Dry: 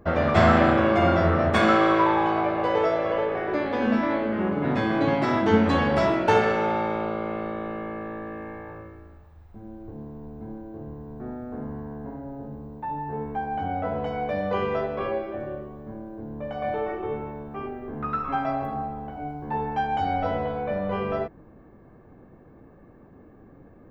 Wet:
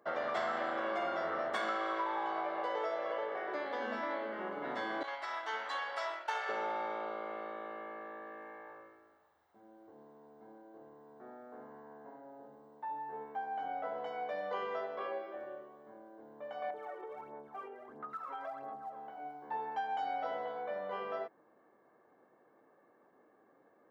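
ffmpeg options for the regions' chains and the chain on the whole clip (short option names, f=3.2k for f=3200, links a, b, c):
-filter_complex "[0:a]asettb=1/sr,asplit=3[a][b][c];[a]atrim=end=5.034[d];[b]atrim=start=5.03:end=6.49,asetpts=PTS-STARTPTS,afade=t=in:d=0.004:c=qsin,afade=t=out:st=1.456:d=0.004:c=qsin,agate=range=-33dB:threshold=-21dB:ratio=3:release=100:detection=peak,highpass=900[e];[c]atrim=start=6.486[f];[d][e]acrossfade=d=0.004:c1=hsin:c2=qsin[g];[g][f]acrossfade=d=0.004:c1=qsin:c2=hsin,asettb=1/sr,asplit=3[h][i][j];[h]atrim=end=16.704[k];[i]atrim=start=16.7:end=18.96,asetpts=PTS-STARTPTS,afade=t=in:d=0.004:c=qsin,afade=t=out:st=2.256:d=0.004:c=qsin,highshelf=f=3k:g=-10,aphaser=in_gain=1:out_gain=1:delay=2.2:decay=0.66:speed=1.5:type=sinusoidal,acompressor=threshold=-29dB:ratio=6:attack=3.2:release=140:knee=1:detection=peak[l];[j]atrim=start=18.956[m];[k][l]acrossfade=d=0.004:c1=hsin:c2=qsin[n];[n][m]acrossfade=d=0.004:c1=qsin:c2=hsin,highpass=550,bandreject=f=2.5k:w=6.1,acompressor=threshold=-24dB:ratio=6,volume=-8dB"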